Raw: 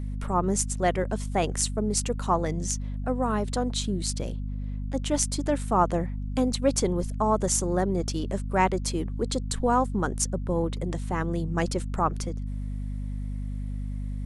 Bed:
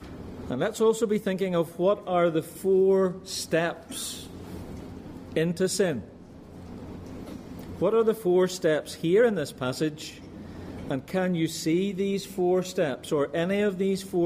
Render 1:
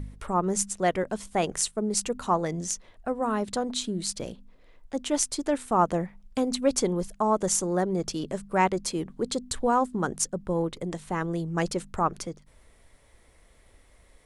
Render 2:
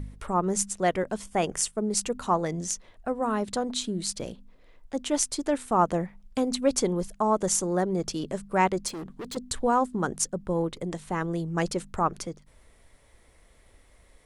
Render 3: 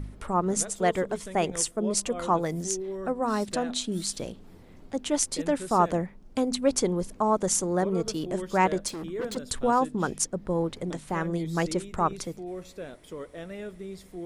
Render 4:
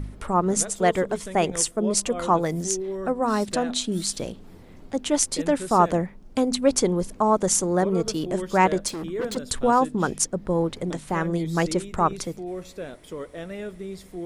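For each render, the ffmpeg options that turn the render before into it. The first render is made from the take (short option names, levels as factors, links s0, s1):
-af "bandreject=f=50:t=h:w=4,bandreject=f=100:t=h:w=4,bandreject=f=150:t=h:w=4,bandreject=f=200:t=h:w=4,bandreject=f=250:t=h:w=4"
-filter_complex "[0:a]asettb=1/sr,asplit=3[s0][s1][s2];[s0]atrim=end=1.244[s3];[s1]atrim=start=1.24:end=1.73,asetpts=PTS-STARTPTS,afade=t=in:d=0.004:c=qsin,afade=t=out:st=0.486:d=0.004:c=qsin,bandreject=f=4000:w=6.2[s4];[s2]atrim=start=1.726[s5];[s3][s4]acrossfade=d=0.004:c1=hsin:c2=qsin[s6];[s6][s5]acrossfade=d=0.004:c1=qsin:c2=hsin,asettb=1/sr,asplit=3[s7][s8][s9];[s7]atrim=end=8.884[s10];[s8]atrim=start=8.88:end=9.37,asetpts=PTS-STARTPTS,afade=t=in:d=0.004:c=qsin,afade=t=out:st=0.486:d=0.004:c=qsin,asoftclip=type=hard:threshold=0.02[s11];[s9]atrim=start=9.366[s12];[s10][s11]acrossfade=d=0.004:c1=hsin:c2=qsin[s13];[s13][s12]acrossfade=d=0.004:c1=qsin:c2=hsin"
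-filter_complex "[1:a]volume=0.211[s0];[0:a][s0]amix=inputs=2:normalize=0"
-af "volume=1.58"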